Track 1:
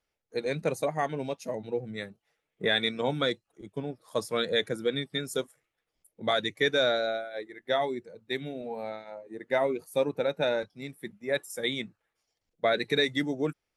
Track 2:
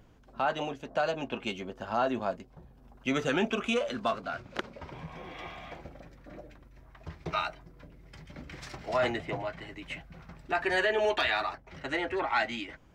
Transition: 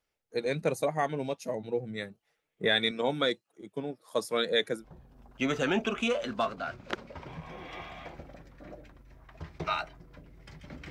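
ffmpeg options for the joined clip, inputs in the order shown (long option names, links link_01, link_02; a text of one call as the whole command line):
ffmpeg -i cue0.wav -i cue1.wav -filter_complex "[0:a]asettb=1/sr,asplit=3[link_01][link_02][link_03];[link_01]atrim=end=2.914[link_04];[link_02]atrim=start=2.91:end=4.85,asetpts=PTS-STARTPTS,afade=type=in:duration=0.004:curve=qsin,afade=type=out:start_time=1.936:duration=0.004:curve=qsin,highpass=180[link_05];[link_03]atrim=start=4.846[link_06];[link_04][link_05]acrossfade=duration=0.004:curve1=hsin:curve2=qsin[link_07];[link_07][link_06]acrossfade=duration=0.004:curve1=qsin:curve2=hsin,apad=whole_dur=10.9,atrim=end=10.9,atrim=end=4.85,asetpts=PTS-STARTPTS[link_08];[1:a]atrim=start=2.41:end=8.56,asetpts=PTS-STARTPTS[link_09];[link_08][link_09]acrossfade=duration=0.1:curve1=tri:curve2=tri" out.wav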